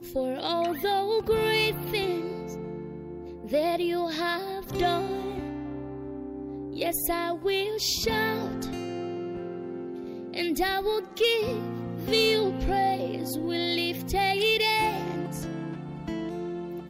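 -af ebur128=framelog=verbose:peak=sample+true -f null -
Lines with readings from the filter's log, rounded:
Integrated loudness:
  I:         -28.1 LUFS
  Threshold: -38.2 LUFS
Loudness range:
  LRA:         4.2 LU
  Threshold: -48.3 LUFS
  LRA low:   -30.3 LUFS
  LRA high:  -26.1 LUFS
Sample peak:
  Peak:      -13.9 dBFS
True peak:
  Peak:      -13.8 dBFS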